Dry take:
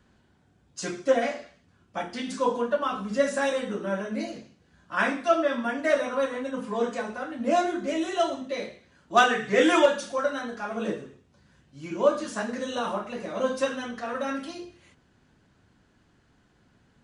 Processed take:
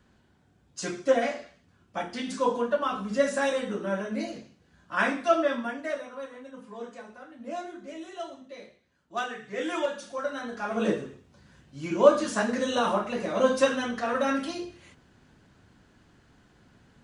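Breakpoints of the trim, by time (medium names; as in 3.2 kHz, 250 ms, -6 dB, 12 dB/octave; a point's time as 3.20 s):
5.50 s -0.5 dB
6.09 s -12.5 dB
9.52 s -12.5 dB
10.29 s -4.5 dB
10.85 s +4 dB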